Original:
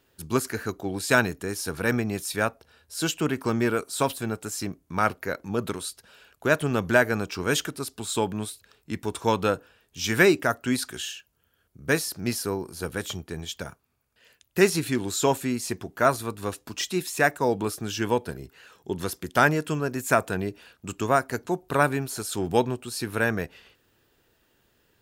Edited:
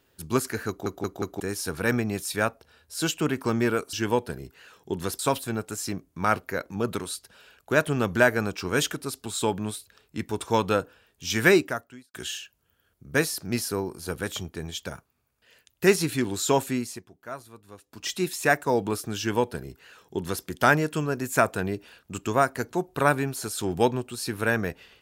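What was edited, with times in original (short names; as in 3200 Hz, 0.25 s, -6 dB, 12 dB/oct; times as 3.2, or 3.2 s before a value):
0.68 stutter in place 0.18 s, 4 plays
10.31–10.88 fade out quadratic
15.49–16.88 dip -16.5 dB, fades 0.28 s
17.92–19.18 copy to 3.93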